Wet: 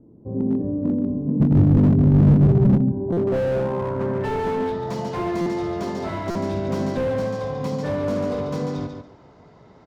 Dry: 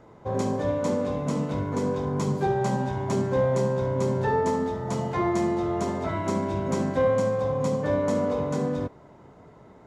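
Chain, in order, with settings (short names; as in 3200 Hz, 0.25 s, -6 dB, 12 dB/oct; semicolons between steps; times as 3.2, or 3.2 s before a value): 1.4–2.78 tone controls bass +14 dB, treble -7 dB; low-pass sweep 280 Hz -> 5000 Hz, 2.85–4.87; on a send: feedback echo 0.143 s, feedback 21%, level -7 dB; on the sum: stuck buffer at 3.12/5.41/6.3, samples 256, times 8; slew limiter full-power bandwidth 48 Hz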